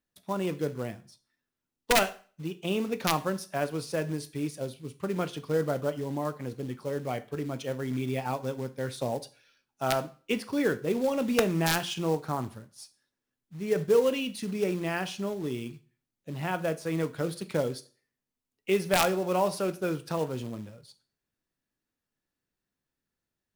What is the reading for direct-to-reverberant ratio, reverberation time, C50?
10.5 dB, 0.40 s, 18.0 dB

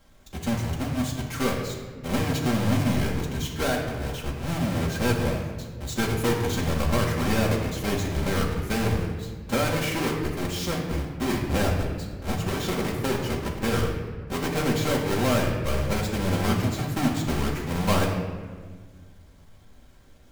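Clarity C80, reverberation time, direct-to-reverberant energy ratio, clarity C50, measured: 5.5 dB, 1.6 s, −3.5 dB, 4.0 dB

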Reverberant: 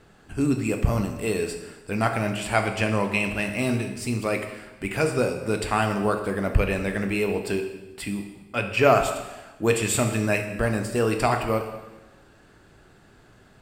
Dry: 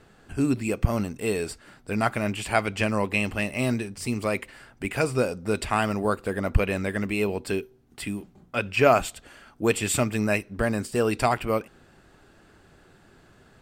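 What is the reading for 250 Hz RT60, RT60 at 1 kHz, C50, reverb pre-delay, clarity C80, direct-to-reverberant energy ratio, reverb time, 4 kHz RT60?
1.1 s, 1.1 s, 7.5 dB, 7 ms, 9.5 dB, 5.0 dB, 1.1 s, 1.0 s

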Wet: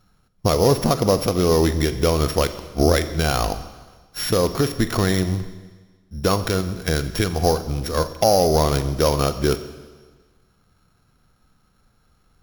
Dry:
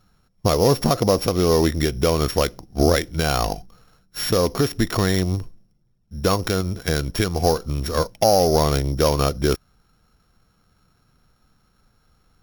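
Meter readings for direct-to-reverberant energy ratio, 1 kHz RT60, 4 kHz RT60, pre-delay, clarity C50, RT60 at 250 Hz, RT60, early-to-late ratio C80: 11.0 dB, 1.4 s, 1.4 s, 38 ms, 13.0 dB, 1.4 s, 1.4 s, 13.5 dB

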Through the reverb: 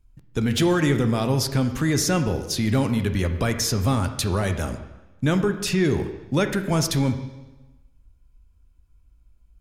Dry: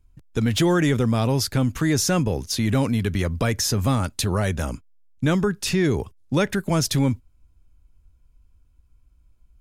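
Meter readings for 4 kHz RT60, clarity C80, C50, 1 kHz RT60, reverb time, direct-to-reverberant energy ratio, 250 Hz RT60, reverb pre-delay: 1.0 s, 11.5 dB, 9.5 dB, 1.1 s, 1.1 s, 7.5 dB, 1.1 s, 7 ms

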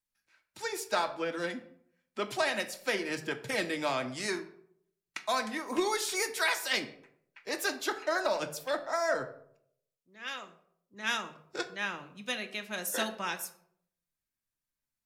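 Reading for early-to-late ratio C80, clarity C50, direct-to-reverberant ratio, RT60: 16.0 dB, 13.5 dB, 6.0 dB, 0.65 s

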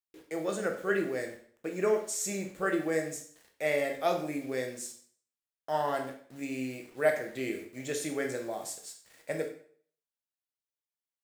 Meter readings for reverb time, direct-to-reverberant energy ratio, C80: 0.50 s, 3.0 dB, 11.5 dB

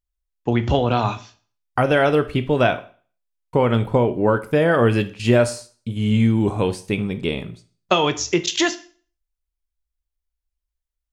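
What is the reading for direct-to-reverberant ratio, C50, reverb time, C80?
10.0 dB, 15.5 dB, 0.40 s, 20.5 dB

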